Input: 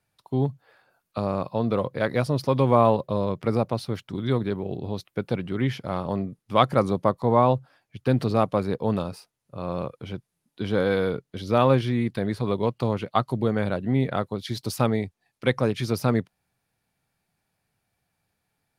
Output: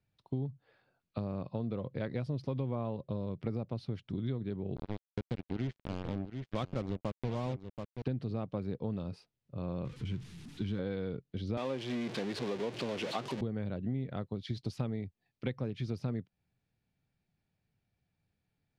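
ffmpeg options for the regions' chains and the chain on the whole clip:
-filter_complex "[0:a]asettb=1/sr,asplit=3[a][b][c];[a]atrim=end=4.764[d];[b]atrim=start=4.76:end=8.02,asetpts=PTS-STARTPTS,afade=t=in:d=0.004:c=qsin,afade=t=out:st=3.256:d=0.004:c=qsin,acrusher=bits=3:mix=0:aa=0.5,aecho=1:1:731:0.2,atrim=end_sample=143766[e];[c]atrim=start=8.016[f];[d][e]acrossfade=d=0.004:c1=hsin:c2=qsin[g];[g][f]acrossfade=d=0.004:c1=qsin:c2=hsin,asettb=1/sr,asplit=3[h][i][j];[h]atrim=end=9.854[k];[i]atrim=start=9.85:end=10.79,asetpts=PTS-STARTPTS,afade=t=in:d=0.004:c=qsin,afade=t=out:st=0.936:d=0.004:c=qsin,aeval=exprs='val(0)+0.5*0.0158*sgn(val(0))':c=same,equalizer=f=590:t=o:w=0.88:g=-13.5[l];[j]atrim=start=10.786[m];[k][l]acrossfade=d=0.004:c1=hsin:c2=qsin[n];[n][m]acrossfade=d=0.004:c1=qsin:c2=hsin,asettb=1/sr,asplit=3[o][p][q];[o]atrim=end=11.574[r];[p]atrim=start=11.57:end=13.41,asetpts=PTS-STARTPTS,afade=t=in:d=0.004:c=qsin,afade=t=out:st=1.836:d=0.004:c=qsin,aeval=exprs='val(0)+0.5*0.1*sgn(val(0))':c=same,highpass=340,bandreject=f=1.3k:w=23[s];[q]atrim=start=13.406[t];[r][s]acrossfade=d=0.004:c1=hsin:c2=qsin[u];[u][t]acrossfade=d=0.004:c1=qsin:c2=hsin,lowpass=3.1k,equalizer=f=1.1k:w=0.47:g=-13,acompressor=threshold=-32dB:ratio=6"

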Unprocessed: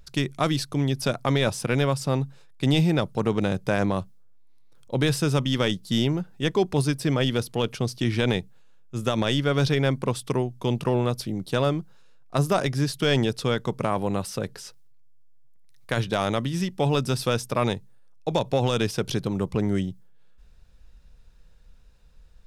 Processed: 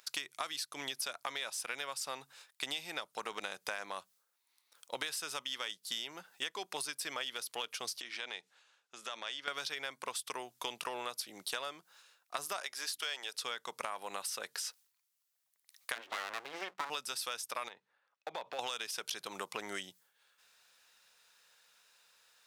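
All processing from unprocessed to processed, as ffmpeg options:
-filter_complex "[0:a]asettb=1/sr,asplit=3[a][b][c];[a]atrim=end=8.014[d];[b]atrim=start=8.01:end=9.48,asetpts=PTS-STARTPTS,afade=t=in:d=0.004:c=qsin,afade=t=out:st=1.466:d=0.004:c=qsin,acompressor=threshold=-38dB:ratio=3:attack=3.2:release=140:knee=1:detection=peak,highpass=170,lowpass=6.6k[e];[c]atrim=start=9.476[f];[d][e]acrossfade=d=0.004:c1=hsin:c2=qsin[g];[g][f]acrossfade=d=0.004:c1=qsin:c2=hsin,asettb=1/sr,asplit=3[h][i][j];[h]atrim=end=12.614[k];[i]atrim=start=12.61:end=13.35,asetpts=PTS-STARTPTS,afade=t=in:d=0.004:c=qsin,afade=t=out:st=0.736:d=0.004:c=qsin,highpass=450,aeval=exprs='val(0)+0.00501*(sin(2*PI*60*n/s)+sin(2*PI*2*60*n/s)/2+sin(2*PI*3*60*n/s)/3+sin(2*PI*4*60*n/s)/4+sin(2*PI*5*60*n/s)/5)':c=same[l];[j]atrim=start=13.346[m];[k][l]acrossfade=d=0.004:c1=hsin:c2=qsin[n];[n][m]acrossfade=d=0.004:c1=qsin:c2=hsin,asettb=1/sr,asplit=3[o][p][q];[o]atrim=end=15.954[r];[p]atrim=start=15.95:end=16.9,asetpts=PTS-STARTPTS,afade=t=in:d=0.004:c=qsin,afade=t=out:st=0.946:d=0.004:c=qsin,lowpass=1.7k,aeval=exprs='abs(val(0))':c=same[s];[q]atrim=start=16.896[t];[r][s]acrossfade=d=0.004:c1=hsin:c2=qsin[u];[u][t]acrossfade=d=0.004:c1=qsin:c2=hsin,asettb=1/sr,asplit=3[v][w][x];[v]atrim=end=17.684[y];[w]atrim=start=17.68:end=18.59,asetpts=PTS-STARTPTS,afade=t=in:d=0.004:c=qsin,afade=t=out:st=0.906:d=0.004:c=qsin,acompressor=threshold=-27dB:ratio=12:attack=3.2:release=140:knee=1:detection=peak,highpass=130,lowpass=2.3k,volume=25dB,asoftclip=hard,volume=-25dB[z];[x]atrim=start=18.586[aa];[y][z]acrossfade=d=0.004:c1=hsin:c2=qsin[ab];[ab][aa]acrossfade=d=0.004:c1=qsin:c2=hsin,highpass=1.1k,highshelf=f=7k:g=5,acompressor=threshold=-40dB:ratio=10,volume=4.5dB"

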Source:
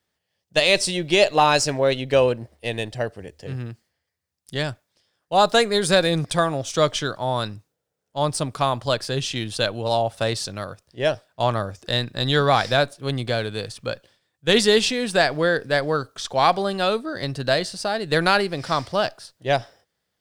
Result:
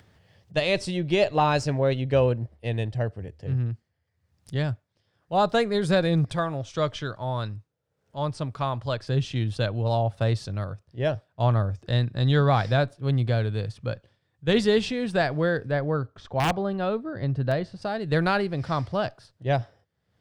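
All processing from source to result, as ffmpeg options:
-filter_complex "[0:a]asettb=1/sr,asplit=3[a][b][c];[a]atrim=end=6.344[d];[b]atrim=start=6.34:end=9.07,asetpts=PTS-STARTPTS,afade=t=in:d=0.004:c=qsin,afade=t=out:st=2.726:d=0.004:c=qsin,acrossover=split=8300[e][f];[f]acompressor=threshold=-53dB:ratio=4:attack=1:release=60[g];[e][g]amix=inputs=2:normalize=0,equalizer=f=140:w=0.32:g=-5.5,bandreject=f=740:w=17[h];[c]atrim=start=9.066[i];[d][h]acrossfade=d=0.004:c1=hsin:c2=qsin[j];[j][i]acrossfade=d=0.004:c1=qsin:c2=hsin,asettb=1/sr,asplit=3[k][l][m];[k]atrim=end=15.714[n];[l]atrim=start=15.71:end=17.82,asetpts=PTS-STARTPTS,afade=t=in:d=0.004:c=qsin,afade=t=out:st=2.106:d=0.004:c=qsin,lowpass=f=1.8k:p=1,aeval=exprs='(mod(3.16*val(0)+1,2)-1)/3.16':c=same[o];[m]atrim=start=17.816[p];[n][o]acrossfade=d=0.004:c1=hsin:c2=qsin[q];[q][p]acrossfade=d=0.004:c1=qsin:c2=hsin,lowpass=f=2.2k:p=1,equalizer=f=99:t=o:w=1.7:g=12.5,acompressor=mode=upward:threshold=-35dB:ratio=2.5,volume=-5dB"

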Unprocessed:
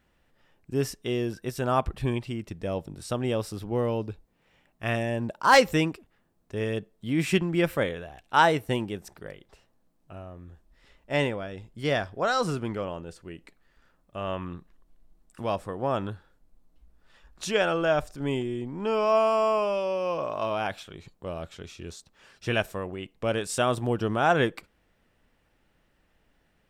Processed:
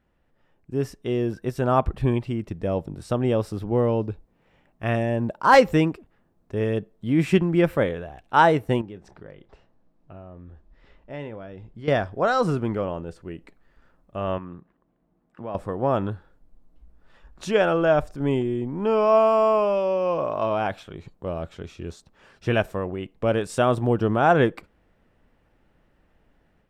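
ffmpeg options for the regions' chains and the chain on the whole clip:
-filter_complex "[0:a]asettb=1/sr,asplit=3[a][b][c];[a]atrim=end=8.814[d];[b]atrim=start=8.81:end=11.88,asetpts=PTS-STARTPTS,afade=t=in:d=0.004:c=qsin,afade=t=out:st=3.066:d=0.004:c=qsin,lowpass=5.4k,acompressor=threshold=-47dB:ratio=2:attack=3.2:release=140:knee=1:detection=peak,asplit=2[e][f];[f]adelay=27,volume=-14dB[g];[e][g]amix=inputs=2:normalize=0,atrim=end_sample=135387[h];[c]atrim=start=11.876[i];[d][h]acrossfade=d=0.004:c1=hsin:c2=qsin[j];[j][i]acrossfade=d=0.004:c1=qsin:c2=hsin,asettb=1/sr,asplit=3[k][l][m];[k]atrim=end=14.384[n];[l]atrim=start=14.38:end=15.55,asetpts=PTS-STARTPTS,afade=t=in:d=0.004:c=qsin,afade=t=out:st=1.166:d=0.004:c=qsin,highpass=110,lowpass=2.5k,acompressor=threshold=-50dB:ratio=1.5:attack=3.2:release=140:knee=1:detection=peak[o];[m]atrim=start=15.546[p];[n][o]acrossfade=d=0.004:c1=hsin:c2=qsin[q];[q][p]acrossfade=d=0.004:c1=qsin:c2=hsin,highshelf=f=2.2k:g=-12,dynaudnorm=f=700:g=3:m=6dB"

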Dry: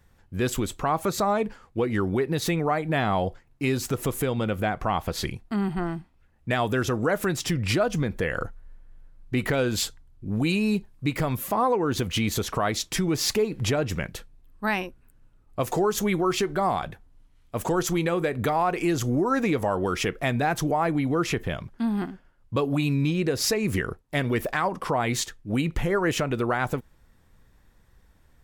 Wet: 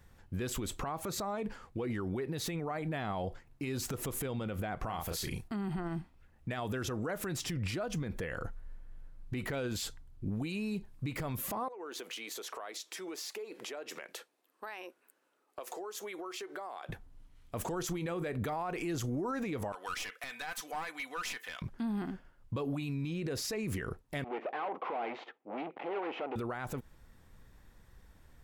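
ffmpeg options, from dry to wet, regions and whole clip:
-filter_complex "[0:a]asettb=1/sr,asplit=3[a][b][c];[a]atrim=end=4.854[d];[b]atrim=start=4.85:end=5.48,asetpts=PTS-STARTPTS,afade=t=in:d=0.004:c=qsin,afade=t=out:st=0.626:d=0.004:c=qsin,highshelf=f=5.7k:g=11,asplit=2[e][f];[f]adelay=36,volume=-6.5dB[g];[e][g]amix=inputs=2:normalize=0,atrim=end_sample=27783[h];[c]atrim=start=5.476[i];[d][h]acrossfade=d=0.004:c1=hsin:c2=qsin[j];[j][i]acrossfade=d=0.004:c1=qsin:c2=hsin,asettb=1/sr,asplit=3[k][l][m];[k]atrim=end=11.684[n];[l]atrim=start=11.68:end=16.89,asetpts=PTS-STARTPTS,afade=t=in:d=0.004:c=qsin,afade=t=out:st=5.206:d=0.004:c=qsin,highpass=f=370:w=0.5412,highpass=f=370:w=1.3066,acompressor=threshold=-39dB:ratio=10:attack=3.2:release=140:knee=1:detection=peak[o];[m]atrim=start=16.886[p];[n][o]acrossfade=d=0.004:c1=hsin:c2=qsin[q];[q][p]acrossfade=d=0.004:c1=qsin:c2=hsin,asettb=1/sr,asplit=3[r][s][t];[r]atrim=end=19.724[u];[s]atrim=start=19.72:end=21.62,asetpts=PTS-STARTPTS,afade=t=in:d=0.004:c=qsin,afade=t=out:st=1.896:d=0.004:c=qsin,highpass=1.5k,aeval=exprs='clip(val(0),-1,0.0188)':c=same,aecho=1:1:4:0.42,atrim=end_sample=83790[v];[t]atrim=start=21.616[w];[u][v]acrossfade=d=0.004:c1=hsin:c2=qsin[x];[x][w]acrossfade=d=0.004:c1=qsin:c2=hsin,asettb=1/sr,asplit=3[y][z][aa];[y]atrim=end=24.244[ab];[z]atrim=start=24.24:end=26.36,asetpts=PTS-STARTPTS,afade=t=in:d=0.004:c=qsin,afade=t=out:st=2.116:d=0.004:c=qsin,aeval=exprs='(tanh(50.1*val(0)+0.7)-tanh(0.7))/50.1':c=same,highpass=f=290:w=0.5412,highpass=f=290:w=1.3066,equalizer=f=460:t=q:w=4:g=4,equalizer=f=780:t=q:w=4:g=9,equalizer=f=1.7k:t=q:w=4:g=-6,lowpass=f=2.6k:w=0.5412,lowpass=f=2.6k:w=1.3066[ac];[aa]atrim=start=26.356[ad];[ab][ac]acrossfade=d=0.004:c1=hsin:c2=qsin[ae];[ae][ad]acrossfade=d=0.004:c1=qsin:c2=hsin,acompressor=threshold=-27dB:ratio=6,alimiter=level_in=4.5dB:limit=-24dB:level=0:latency=1:release=35,volume=-4.5dB"

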